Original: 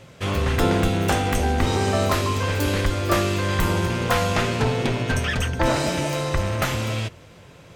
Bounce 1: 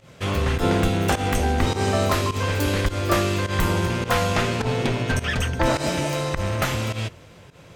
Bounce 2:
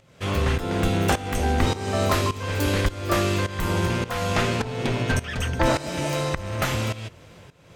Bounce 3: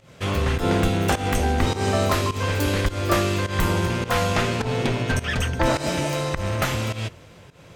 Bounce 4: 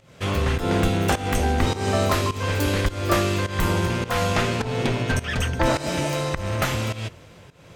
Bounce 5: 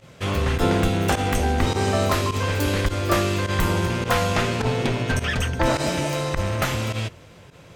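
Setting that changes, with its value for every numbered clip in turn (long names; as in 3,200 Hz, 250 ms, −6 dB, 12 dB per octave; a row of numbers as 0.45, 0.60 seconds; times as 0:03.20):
fake sidechain pumping, release: 110, 510, 164, 245, 62 milliseconds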